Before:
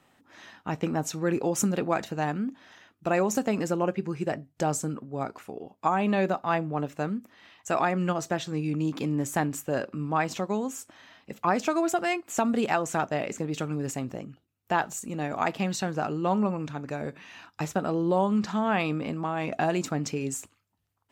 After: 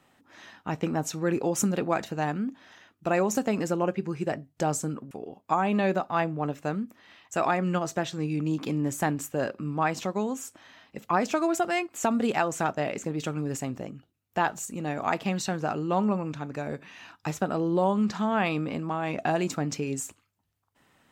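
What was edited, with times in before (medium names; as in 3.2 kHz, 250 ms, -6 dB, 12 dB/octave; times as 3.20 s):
5.11–5.45 s: delete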